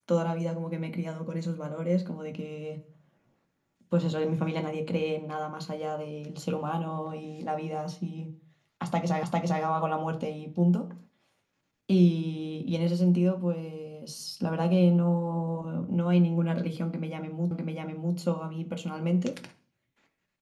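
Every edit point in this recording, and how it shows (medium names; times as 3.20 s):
9.23 s: repeat of the last 0.4 s
17.51 s: repeat of the last 0.65 s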